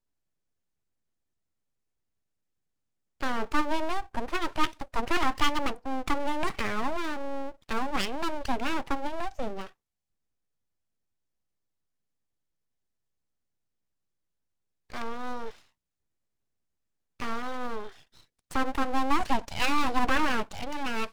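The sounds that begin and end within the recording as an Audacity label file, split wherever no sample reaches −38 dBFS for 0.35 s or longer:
3.210000	9.670000	sound
14.900000	15.510000	sound
17.200000	17.890000	sound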